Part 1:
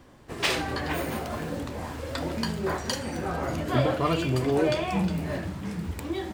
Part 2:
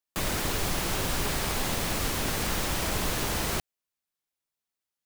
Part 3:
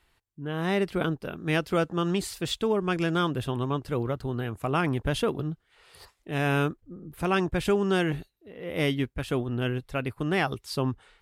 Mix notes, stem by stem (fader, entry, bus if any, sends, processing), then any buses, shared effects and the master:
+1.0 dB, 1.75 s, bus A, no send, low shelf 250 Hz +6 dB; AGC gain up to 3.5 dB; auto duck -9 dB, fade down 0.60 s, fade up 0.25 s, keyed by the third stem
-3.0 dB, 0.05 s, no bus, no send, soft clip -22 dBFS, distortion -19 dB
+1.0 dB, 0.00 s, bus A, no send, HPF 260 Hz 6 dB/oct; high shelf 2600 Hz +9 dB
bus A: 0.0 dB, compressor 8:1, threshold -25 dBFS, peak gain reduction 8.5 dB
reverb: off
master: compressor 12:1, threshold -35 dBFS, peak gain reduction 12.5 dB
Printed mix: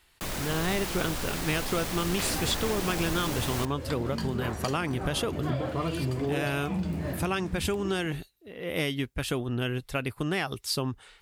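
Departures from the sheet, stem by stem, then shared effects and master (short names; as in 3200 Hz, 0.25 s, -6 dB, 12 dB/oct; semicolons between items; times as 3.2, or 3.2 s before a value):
stem 3: missing HPF 260 Hz 6 dB/oct; master: missing compressor 12:1, threshold -35 dBFS, peak gain reduction 12.5 dB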